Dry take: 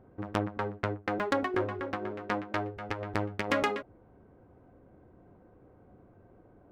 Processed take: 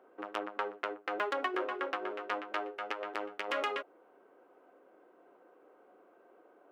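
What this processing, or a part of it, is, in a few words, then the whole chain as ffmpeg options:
laptop speaker: -af "highpass=f=360:w=0.5412,highpass=f=360:w=1.3066,equalizer=f=1300:t=o:w=0.53:g=5,equalizer=f=2900:t=o:w=0.54:g=7,alimiter=limit=0.106:level=0:latency=1:release=168"

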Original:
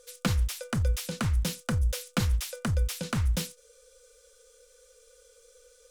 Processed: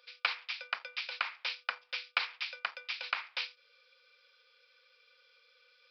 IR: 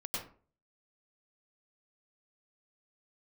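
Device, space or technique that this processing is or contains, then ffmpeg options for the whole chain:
musical greeting card: -af "aresample=11025,aresample=44100,highpass=f=820:w=0.5412,highpass=f=820:w=1.3066,equalizer=f=2400:t=o:w=0.33:g=10"

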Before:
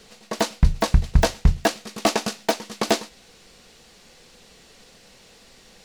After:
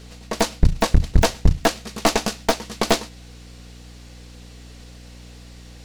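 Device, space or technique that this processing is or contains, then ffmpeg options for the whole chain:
valve amplifier with mains hum: -af "aeval=exprs='(tanh(5.62*val(0)+0.8)-tanh(0.8))/5.62':c=same,aeval=exprs='val(0)+0.00398*(sin(2*PI*60*n/s)+sin(2*PI*2*60*n/s)/2+sin(2*PI*3*60*n/s)/3+sin(2*PI*4*60*n/s)/4+sin(2*PI*5*60*n/s)/5)':c=same,volume=2.24"

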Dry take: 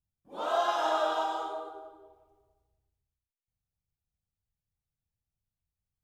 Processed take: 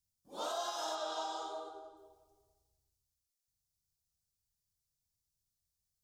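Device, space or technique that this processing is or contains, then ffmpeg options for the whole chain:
over-bright horn tweeter: -filter_complex "[0:a]highshelf=f=3500:t=q:w=1.5:g=12,alimiter=limit=0.0631:level=0:latency=1:release=450,asettb=1/sr,asplit=3[s0][s1][s2];[s0]atrim=end=0.954[s3];[s1]atrim=start=0.95:end=1.97,asetpts=PTS-STARTPTS,afade=t=in:d=0.004:c=qsin,afade=t=out:st=1.016:d=0.004:c=qsin,lowpass=6900[s4];[s2]atrim=start=1.966[s5];[s3][s4]acrossfade=d=0.004:c1=hsin:c2=qsin[s6];[s6][s5]acrossfade=d=0.004:c1=qsin:c2=hsin,volume=0.596"

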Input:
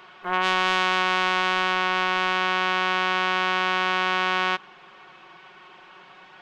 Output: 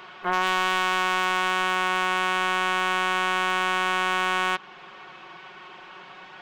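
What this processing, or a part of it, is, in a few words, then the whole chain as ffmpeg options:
clipper into limiter: -af "asoftclip=type=hard:threshold=0.251,alimiter=limit=0.168:level=0:latency=1:release=235,volume=1.58"

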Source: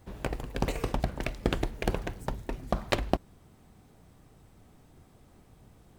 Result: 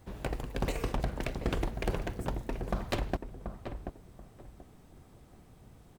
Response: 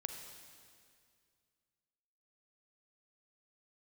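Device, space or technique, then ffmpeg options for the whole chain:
saturation between pre-emphasis and de-emphasis: -filter_complex "[0:a]highshelf=f=2100:g=10,asoftclip=type=tanh:threshold=0.1,highshelf=f=2100:g=-10,asplit=2[s0][s1];[s1]adelay=733,lowpass=f=1100:p=1,volume=0.447,asplit=2[s2][s3];[s3]adelay=733,lowpass=f=1100:p=1,volume=0.26,asplit=2[s4][s5];[s5]adelay=733,lowpass=f=1100:p=1,volume=0.26[s6];[s0][s2][s4][s6]amix=inputs=4:normalize=0"

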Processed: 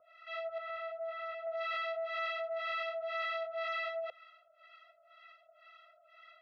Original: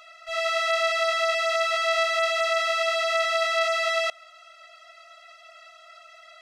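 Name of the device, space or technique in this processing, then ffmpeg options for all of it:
guitar amplifier with harmonic tremolo: -filter_complex "[0:a]acrossover=split=780[s0][s1];[s0]aeval=exprs='val(0)*(1-1/2+1/2*cos(2*PI*2*n/s))':c=same[s2];[s1]aeval=exprs='val(0)*(1-1/2-1/2*cos(2*PI*2*n/s))':c=same[s3];[s2][s3]amix=inputs=2:normalize=0,asoftclip=type=tanh:threshold=0.0596,highpass=91,equalizer=f=110:t=q:w=4:g=-7,equalizer=f=190:t=q:w=4:g=-4,equalizer=f=520:t=q:w=4:g=9,equalizer=f=1600:t=q:w=4:g=6,lowpass=f=3600:w=0.5412,lowpass=f=3600:w=1.3066,asettb=1/sr,asplit=3[s4][s5][s6];[s4]atrim=end=0.584[s7];[s5]atrim=start=0.58:end=1.47,asetpts=PTS-STARTPTS,afade=t=in:d=0.004:c=qsin,afade=t=out:st=0.886:d=0.004:c=qsin,equalizer=f=5500:t=o:w=2.9:g=-14.5[s8];[s6]atrim=start=1.466[s9];[s7][s8]acrossfade=d=0.004:c1=hsin:c2=qsin[s10];[s10][s9]acrossfade=d=0.004:c1=qsin:c2=hsin,volume=0.422"

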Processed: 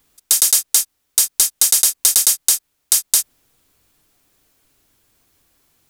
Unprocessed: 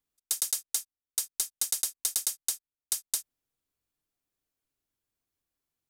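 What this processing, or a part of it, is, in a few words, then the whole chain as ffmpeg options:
loud club master: -af "acompressor=threshold=0.0251:ratio=1.5,asoftclip=type=hard:threshold=0.126,alimiter=level_in=21.1:limit=0.891:release=50:level=0:latency=1,volume=0.891"

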